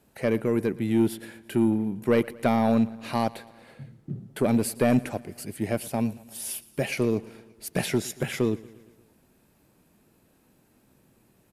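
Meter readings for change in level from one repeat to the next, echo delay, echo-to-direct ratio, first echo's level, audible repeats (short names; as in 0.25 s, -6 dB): -4.5 dB, 0.115 s, -19.0 dB, -21.0 dB, 4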